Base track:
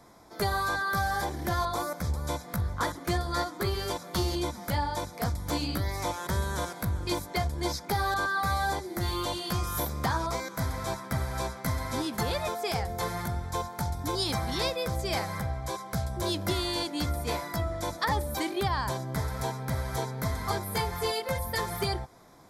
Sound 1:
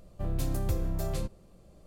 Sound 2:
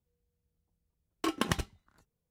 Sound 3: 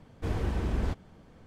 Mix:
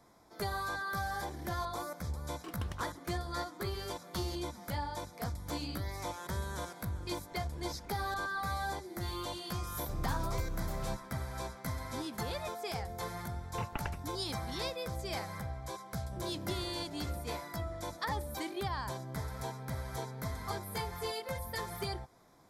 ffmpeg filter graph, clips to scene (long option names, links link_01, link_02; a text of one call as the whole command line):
ffmpeg -i bed.wav -i cue0.wav -i cue1.wav -i cue2.wav -filter_complex "[2:a]asplit=2[link_01][link_02];[1:a]asplit=2[link_03][link_04];[0:a]volume=-8dB[link_05];[link_01]tremolo=f=6.9:d=0.33[link_06];[3:a]acompressor=threshold=-44dB:ratio=6:attack=3.2:release=140:knee=1:detection=peak[link_07];[link_02]highpass=frequency=180:width_type=q:width=0.5412,highpass=frequency=180:width_type=q:width=1.307,lowpass=frequency=2900:width_type=q:width=0.5176,lowpass=frequency=2900:width_type=q:width=0.7071,lowpass=frequency=2900:width_type=q:width=1.932,afreqshift=-210[link_08];[link_04]highpass=120,lowpass=6300[link_09];[link_06]atrim=end=2.3,asetpts=PTS-STARTPTS,volume=-14dB,afade=type=in:duration=0.004:curve=hsin,afade=type=out:start_time=2.296:duration=0.004:curve=hsin,adelay=1200[link_10];[link_07]atrim=end=1.46,asetpts=PTS-STARTPTS,volume=-6.5dB,afade=type=in:duration=0.004:curve=hsin,afade=type=out:start_time=1.456:duration=0.004:curve=hsin,adelay=321930S[link_11];[link_03]atrim=end=1.86,asetpts=PTS-STARTPTS,volume=-7dB,afade=type=in:duration=0.004:curve=hsin,afade=type=out:start_time=1.856:duration=0.004:curve=hsin,adelay=9690[link_12];[link_08]atrim=end=2.3,asetpts=PTS-STARTPTS,volume=-7dB,afade=type=in:duration=0.004:curve=hsin,afade=type=out:start_time=2.296:duration=0.004:curve=hsin,adelay=12340[link_13];[link_09]atrim=end=1.86,asetpts=PTS-STARTPTS,volume=-12dB,afade=type=in:duration=0.004:curve=hsin,afade=type=out:start_time=1.856:duration=0.004:curve=hsin,adelay=15920[link_14];[link_05][link_10][link_11][link_12][link_13][link_14]amix=inputs=6:normalize=0" out.wav